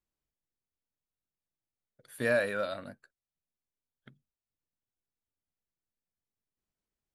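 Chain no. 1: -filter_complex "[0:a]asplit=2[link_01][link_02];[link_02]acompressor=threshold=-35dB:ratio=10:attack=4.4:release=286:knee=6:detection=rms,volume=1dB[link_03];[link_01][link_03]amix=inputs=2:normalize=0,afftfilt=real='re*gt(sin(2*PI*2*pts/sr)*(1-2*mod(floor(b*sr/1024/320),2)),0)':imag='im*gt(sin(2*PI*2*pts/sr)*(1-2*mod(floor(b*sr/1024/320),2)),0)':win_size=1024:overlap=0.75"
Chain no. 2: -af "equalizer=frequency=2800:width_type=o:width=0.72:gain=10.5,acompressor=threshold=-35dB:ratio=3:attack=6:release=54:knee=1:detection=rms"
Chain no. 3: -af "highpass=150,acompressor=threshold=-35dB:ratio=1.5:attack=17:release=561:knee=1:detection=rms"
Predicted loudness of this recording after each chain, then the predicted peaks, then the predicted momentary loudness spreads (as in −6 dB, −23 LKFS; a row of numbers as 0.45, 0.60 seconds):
−31.0, −38.0, −35.5 LKFS; −16.5, −23.0, −21.0 dBFS; 22, 17, 19 LU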